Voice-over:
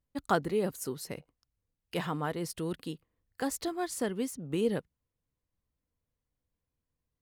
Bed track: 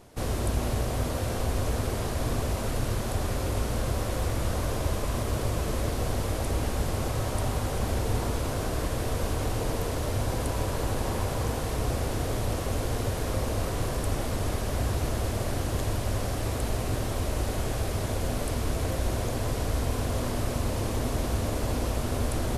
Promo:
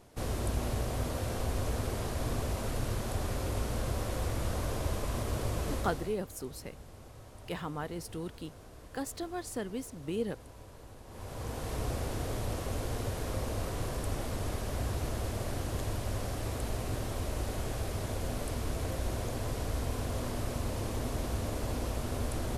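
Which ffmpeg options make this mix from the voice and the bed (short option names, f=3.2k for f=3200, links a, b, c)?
-filter_complex "[0:a]adelay=5550,volume=-4.5dB[a];[1:a]volume=11dB,afade=t=out:st=5.72:d=0.46:silence=0.141254,afade=t=in:st=11.07:d=0.68:silence=0.158489[b];[a][b]amix=inputs=2:normalize=0"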